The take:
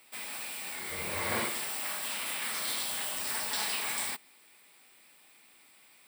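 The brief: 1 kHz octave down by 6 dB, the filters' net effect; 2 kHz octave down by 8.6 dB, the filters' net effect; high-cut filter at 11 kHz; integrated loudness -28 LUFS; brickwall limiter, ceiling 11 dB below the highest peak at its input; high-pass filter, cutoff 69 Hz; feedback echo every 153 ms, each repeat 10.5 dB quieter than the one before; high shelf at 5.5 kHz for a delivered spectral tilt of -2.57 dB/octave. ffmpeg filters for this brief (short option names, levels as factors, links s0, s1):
-af "highpass=69,lowpass=11000,equalizer=f=1000:t=o:g=-5,equalizer=f=2000:t=o:g=-8,highshelf=f=5500:g=-9,alimiter=level_in=3.35:limit=0.0631:level=0:latency=1,volume=0.299,aecho=1:1:153|306|459:0.299|0.0896|0.0269,volume=5.31"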